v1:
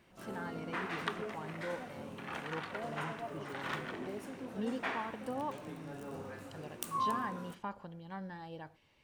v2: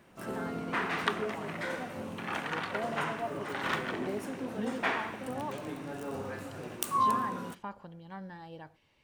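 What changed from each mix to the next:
background +7.0 dB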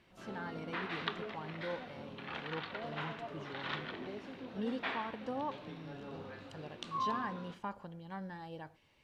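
background: add transistor ladder low-pass 4,500 Hz, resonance 50%

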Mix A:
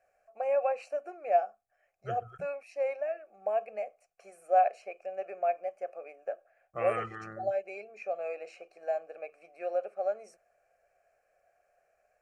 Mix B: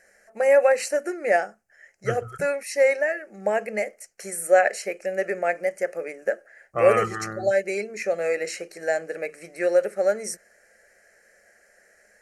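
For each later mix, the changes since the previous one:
first voice: remove formant filter a
second voice +11.0 dB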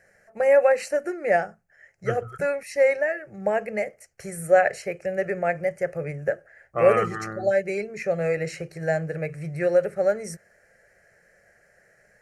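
first voice: remove linear-phase brick-wall high-pass 190 Hz
master: add parametric band 8,500 Hz −7.5 dB 2.3 octaves

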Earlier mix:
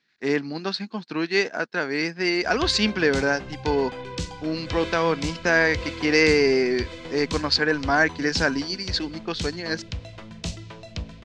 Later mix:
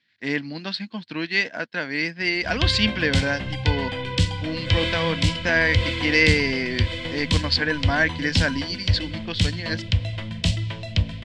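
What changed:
background +7.5 dB
master: add thirty-one-band graphic EQ 100 Hz +11 dB, 400 Hz −12 dB, 800 Hz −6 dB, 1,250 Hz −8 dB, 2,000 Hz +4 dB, 3,150 Hz +7 dB, 6,300 Hz −8 dB

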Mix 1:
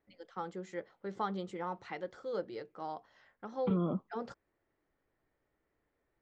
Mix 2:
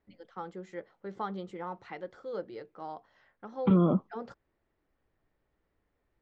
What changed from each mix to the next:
second voice +8.5 dB
master: add high-shelf EQ 5,400 Hz −9 dB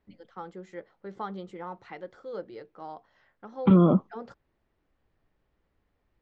second voice +5.0 dB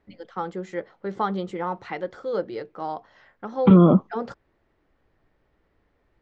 first voice +10.5 dB
second voice +5.0 dB

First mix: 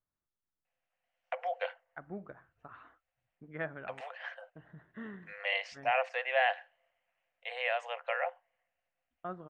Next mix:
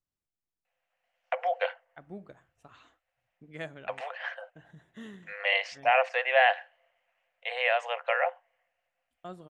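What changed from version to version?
first voice +6.5 dB
second voice: remove low-pass with resonance 1,500 Hz, resonance Q 2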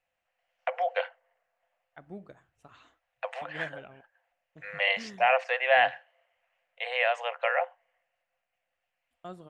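first voice: entry −0.65 s

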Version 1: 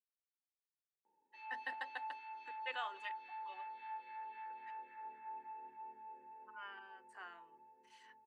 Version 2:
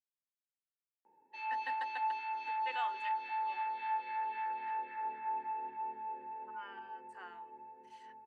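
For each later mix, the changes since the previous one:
background +11.0 dB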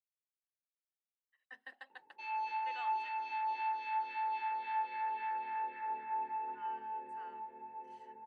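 speech −7.0 dB
background: entry +0.85 s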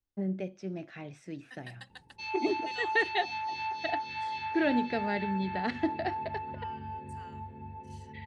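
first voice: unmuted
background: remove high-pass filter 260 Hz 12 dB per octave
master: remove three-way crossover with the lows and the highs turned down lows −24 dB, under 340 Hz, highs −20 dB, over 2,500 Hz

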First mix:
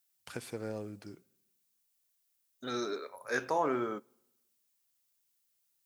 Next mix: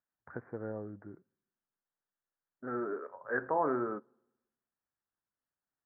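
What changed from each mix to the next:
first voice: send −8.5 dB
master: add Butterworth low-pass 1,800 Hz 72 dB per octave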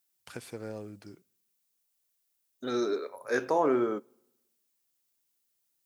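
second voice: add parametric band 370 Hz +7.5 dB 1.8 octaves
master: remove Butterworth low-pass 1,800 Hz 72 dB per octave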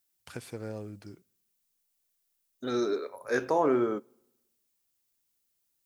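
master: add low-shelf EQ 86 Hz +12 dB

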